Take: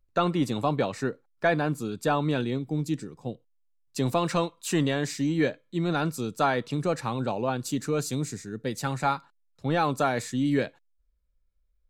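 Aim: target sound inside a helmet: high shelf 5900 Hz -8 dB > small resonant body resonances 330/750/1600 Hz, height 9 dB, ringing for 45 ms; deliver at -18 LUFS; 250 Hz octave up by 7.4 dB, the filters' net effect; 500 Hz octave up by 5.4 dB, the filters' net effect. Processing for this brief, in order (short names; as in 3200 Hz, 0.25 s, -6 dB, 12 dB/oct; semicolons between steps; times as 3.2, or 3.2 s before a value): bell 250 Hz +8 dB; bell 500 Hz +4.5 dB; high shelf 5900 Hz -8 dB; small resonant body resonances 330/750/1600 Hz, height 9 dB, ringing for 45 ms; gain +1 dB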